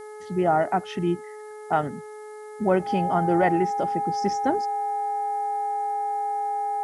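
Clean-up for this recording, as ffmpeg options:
-af "bandreject=f=424.8:t=h:w=4,bandreject=f=849.6:t=h:w=4,bandreject=f=1.2744k:t=h:w=4,bandreject=f=1.6992k:t=h:w=4,bandreject=f=2.124k:t=h:w=4,bandreject=f=810:w=30,agate=range=-21dB:threshold=-32dB"

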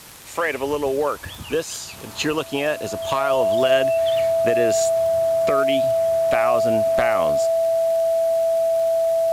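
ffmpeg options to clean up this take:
-af "adeclick=t=4,bandreject=f=660:w=30,afwtdn=0.0079"

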